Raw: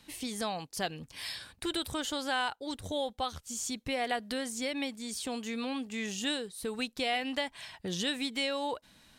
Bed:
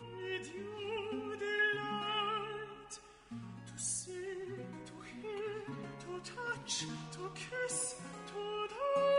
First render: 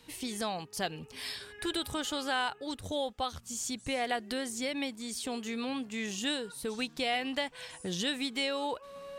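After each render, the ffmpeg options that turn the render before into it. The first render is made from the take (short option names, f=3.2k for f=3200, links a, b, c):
-filter_complex "[1:a]volume=-15dB[a];[0:a][a]amix=inputs=2:normalize=0"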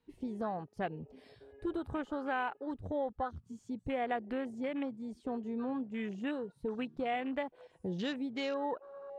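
-af "lowpass=f=1.2k:p=1,afwtdn=0.00631"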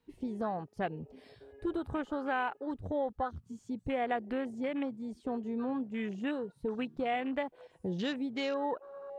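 -af "volume=2dB"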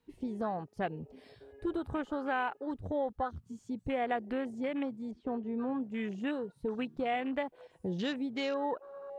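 -filter_complex "[0:a]asettb=1/sr,asplit=3[a][b][c];[a]atrim=end=5.114[d];[b]atrim=start=5.11:end=5.82,asetpts=PTS-STARTPTS,afade=t=in:d=0.004:c=qsin,afade=t=out:st=0.706:d=0.004:c=qsin,lowpass=2.8k[e];[c]atrim=start=5.816[f];[d][e]acrossfade=d=0.004:c1=hsin:c2=qsin[g];[g][f]acrossfade=d=0.004:c1=qsin:c2=hsin"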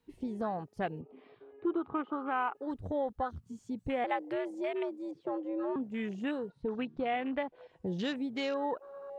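-filter_complex "[0:a]asettb=1/sr,asplit=3[a][b][c];[a]atrim=end=1.014[d];[b]atrim=start=1.01:end=2.55,asetpts=PTS-STARTPTS,afade=t=in:d=0.004:c=qsin,afade=t=out:st=1.536:d=0.004:c=qsin,highpass=230,equalizer=f=350:t=q:w=4:g=4,equalizer=f=570:t=q:w=4:g=-6,equalizer=f=1.2k:t=q:w=4:g=9,equalizer=f=1.7k:t=q:w=4:g=-8,lowpass=f=2.8k:w=0.5412,lowpass=f=2.8k:w=1.3066[e];[c]atrim=start=2.546[f];[d][e]acrossfade=d=0.004:c1=hsin:c2=qsin[g];[g][f]acrossfade=d=0.004:c1=qsin:c2=hsin,asettb=1/sr,asplit=3[h][i][j];[h]atrim=end=4.044[k];[i]atrim=start=4.04:end=5.76,asetpts=PTS-STARTPTS,afade=t=in:d=0.004:c=qsin,afade=t=out:st=1.716:d=0.004:c=qsin,afreqshift=95[l];[j]atrim=start=5.756[m];[k][l]acrossfade=d=0.004:c1=hsin:c2=qsin[n];[n][m]acrossfade=d=0.004:c1=qsin:c2=hsin,asettb=1/sr,asplit=3[o][p][q];[o]atrim=end=6.504[r];[p]atrim=start=6.5:end=7.87,asetpts=PTS-STARTPTS,afade=t=in:d=0.004:c=qsin,afade=t=out:st=1.366:d=0.004:c=qsin,lowpass=4.4k[s];[q]atrim=start=7.866[t];[r][s]acrossfade=d=0.004:c1=hsin:c2=qsin[u];[u][t]acrossfade=d=0.004:c1=qsin:c2=hsin"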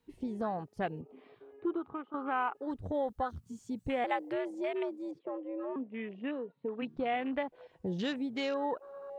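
-filter_complex "[0:a]asettb=1/sr,asplit=3[a][b][c];[a]atrim=end=2.944[d];[b]atrim=start=2.94:end=4.3,asetpts=PTS-STARTPTS,afade=t=in:d=0.004:c=qsin,afade=t=out:st=1.356:d=0.004:c=qsin,highshelf=f=4.6k:g=6.5[e];[c]atrim=start=4.296[f];[d][e]acrossfade=d=0.004:c1=hsin:c2=qsin[g];[g][f]acrossfade=d=0.004:c1=qsin:c2=hsin,asplit=3[h][i][j];[h]afade=t=out:st=5.18:d=0.02[k];[i]highpass=f=190:w=0.5412,highpass=f=190:w=1.3066,equalizer=f=200:t=q:w=4:g=-6,equalizer=f=350:t=q:w=4:g=-5,equalizer=f=820:t=q:w=4:g=-6,equalizer=f=1.5k:t=q:w=4:g=-8,lowpass=f=2.8k:w=0.5412,lowpass=f=2.8k:w=1.3066,afade=t=in:st=5.18:d=0.02,afade=t=out:st=6.81:d=0.02[l];[j]afade=t=in:st=6.81:d=0.02[m];[k][l][m]amix=inputs=3:normalize=0,asplit=2[n][o];[n]atrim=end=2.14,asetpts=PTS-STARTPTS,afade=t=out:st=1.55:d=0.59:silence=0.281838[p];[o]atrim=start=2.14,asetpts=PTS-STARTPTS,afade=t=in:d=0.004:c=hsin:silence=0.281838[q];[p][q]concat=n=2:v=0:a=1"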